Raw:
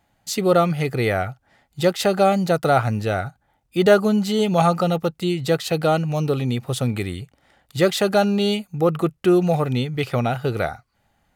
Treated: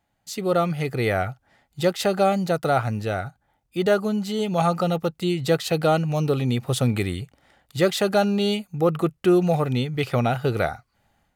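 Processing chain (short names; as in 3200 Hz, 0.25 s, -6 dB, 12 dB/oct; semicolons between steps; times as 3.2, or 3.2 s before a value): AGC; gain -8 dB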